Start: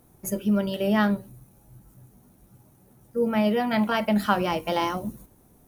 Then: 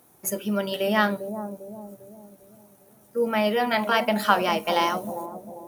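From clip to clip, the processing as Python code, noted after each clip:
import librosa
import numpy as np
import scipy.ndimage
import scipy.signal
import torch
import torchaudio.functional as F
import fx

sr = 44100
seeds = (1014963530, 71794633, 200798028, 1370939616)

y = fx.highpass(x, sr, hz=600.0, slope=6)
y = fx.echo_bbd(y, sr, ms=399, stages=2048, feedback_pct=46, wet_db=-8.5)
y = y * 10.0 ** (5.0 / 20.0)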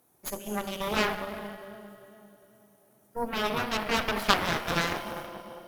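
y = fx.rev_schroeder(x, sr, rt60_s=2.8, comb_ms=27, drr_db=5.5)
y = fx.cheby_harmonics(y, sr, harmonics=(3, 6), levels_db=(-7, -17), full_scale_db=-5.0)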